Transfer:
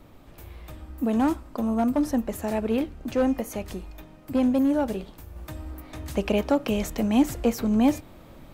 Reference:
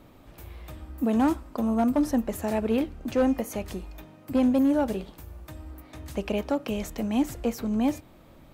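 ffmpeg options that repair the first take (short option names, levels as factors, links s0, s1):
-af "agate=range=0.0891:threshold=0.0112,asetnsamples=n=441:p=0,asendcmd='5.36 volume volume -4.5dB',volume=1"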